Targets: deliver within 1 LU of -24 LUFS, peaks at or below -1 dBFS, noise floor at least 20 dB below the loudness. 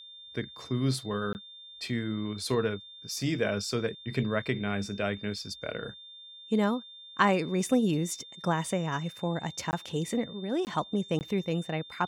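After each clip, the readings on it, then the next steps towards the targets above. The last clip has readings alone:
dropouts 4; longest dropout 19 ms; steady tone 3600 Hz; tone level -46 dBFS; loudness -31.0 LUFS; peak -9.5 dBFS; loudness target -24.0 LUFS
-> interpolate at 1.33/9.71/10.65/11.19, 19 ms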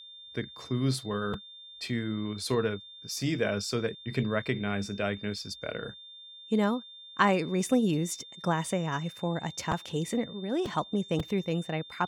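dropouts 0; steady tone 3600 Hz; tone level -46 dBFS
-> notch 3600 Hz, Q 30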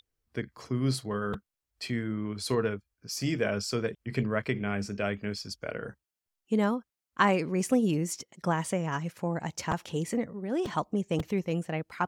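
steady tone none; loudness -31.0 LUFS; peak -9.5 dBFS; loudness target -24.0 LUFS
-> gain +7 dB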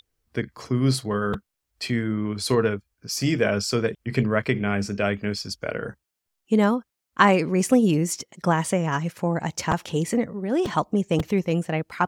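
loudness -24.0 LUFS; peak -2.5 dBFS; noise floor -82 dBFS

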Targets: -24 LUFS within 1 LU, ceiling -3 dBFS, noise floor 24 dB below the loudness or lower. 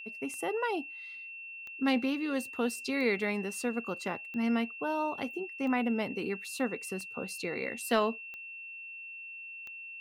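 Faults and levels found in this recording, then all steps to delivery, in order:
clicks 8; steady tone 2700 Hz; tone level -42 dBFS; loudness -34.0 LUFS; peak -15.0 dBFS; loudness target -24.0 LUFS
-> de-click; notch 2700 Hz, Q 30; gain +10 dB

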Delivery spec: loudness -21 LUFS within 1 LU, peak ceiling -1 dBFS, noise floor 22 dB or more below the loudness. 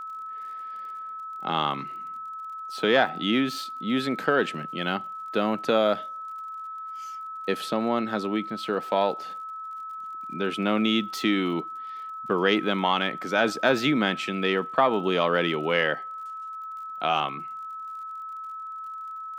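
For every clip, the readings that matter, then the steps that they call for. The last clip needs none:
ticks 47/s; steady tone 1300 Hz; tone level -34 dBFS; loudness -27.0 LUFS; peak -6.5 dBFS; loudness target -21.0 LUFS
-> de-click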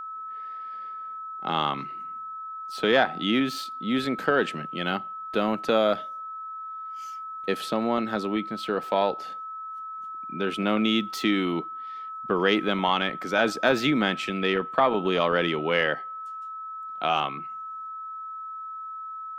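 ticks 0.21/s; steady tone 1300 Hz; tone level -34 dBFS
-> notch 1300 Hz, Q 30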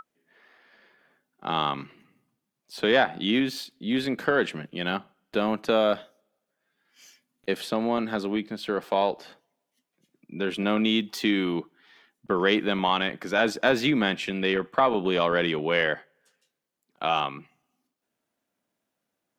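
steady tone none; loudness -26.0 LUFS; peak -7.0 dBFS; loudness target -21.0 LUFS
-> gain +5 dB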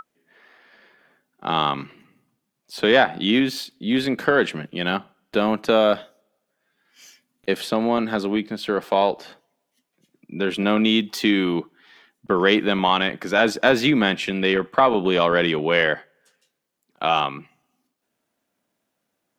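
loudness -21.0 LUFS; peak -2.0 dBFS; noise floor -77 dBFS

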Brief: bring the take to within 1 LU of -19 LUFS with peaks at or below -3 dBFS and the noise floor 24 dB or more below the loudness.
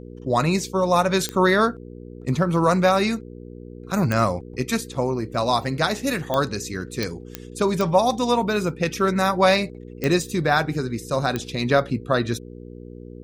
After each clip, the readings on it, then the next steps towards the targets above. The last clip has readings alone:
clicks 8; hum 60 Hz; harmonics up to 480 Hz; hum level -37 dBFS; loudness -22.0 LUFS; peak -5.5 dBFS; loudness target -19.0 LUFS
-> de-click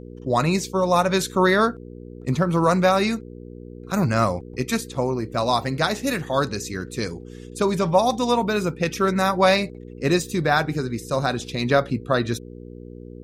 clicks 0; hum 60 Hz; harmonics up to 480 Hz; hum level -37 dBFS
-> de-hum 60 Hz, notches 8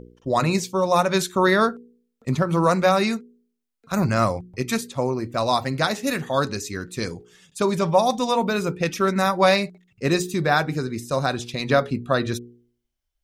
hum none; loudness -22.5 LUFS; peak -5.5 dBFS; loudness target -19.0 LUFS
-> gain +3.5 dB; limiter -3 dBFS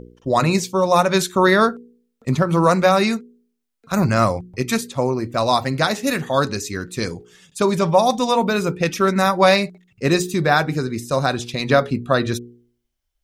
loudness -19.0 LUFS; peak -3.0 dBFS; noise floor -74 dBFS

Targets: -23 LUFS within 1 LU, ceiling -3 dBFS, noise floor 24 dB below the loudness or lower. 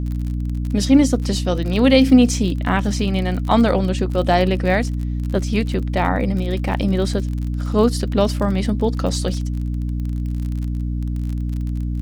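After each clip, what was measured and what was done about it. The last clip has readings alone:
ticks 41/s; hum 60 Hz; harmonics up to 300 Hz; hum level -20 dBFS; loudness -19.5 LUFS; peak -1.5 dBFS; loudness target -23.0 LUFS
-> de-click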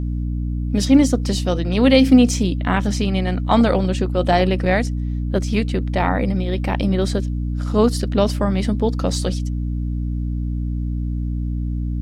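ticks 0.083/s; hum 60 Hz; harmonics up to 300 Hz; hum level -20 dBFS
-> de-hum 60 Hz, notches 5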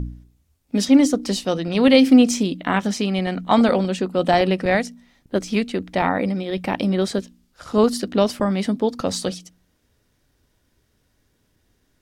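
hum none; loudness -20.0 LUFS; peak -2.5 dBFS; loudness target -23.0 LUFS
-> gain -3 dB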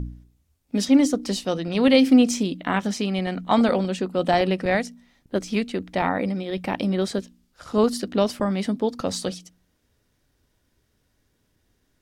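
loudness -23.0 LUFS; peak -5.5 dBFS; noise floor -69 dBFS

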